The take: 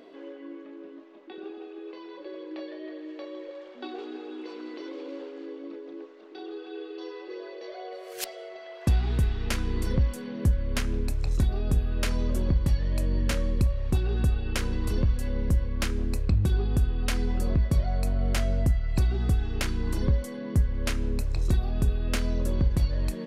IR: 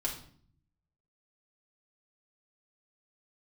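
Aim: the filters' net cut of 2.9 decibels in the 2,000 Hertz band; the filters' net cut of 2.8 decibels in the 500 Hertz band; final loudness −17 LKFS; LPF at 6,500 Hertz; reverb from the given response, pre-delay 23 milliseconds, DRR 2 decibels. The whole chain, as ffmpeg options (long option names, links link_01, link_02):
-filter_complex "[0:a]lowpass=6500,equalizer=frequency=500:width_type=o:gain=-3.5,equalizer=frequency=2000:width_type=o:gain=-3.5,asplit=2[link_01][link_02];[1:a]atrim=start_sample=2205,adelay=23[link_03];[link_02][link_03]afir=irnorm=-1:irlink=0,volume=-5dB[link_04];[link_01][link_04]amix=inputs=2:normalize=0,volume=7dB"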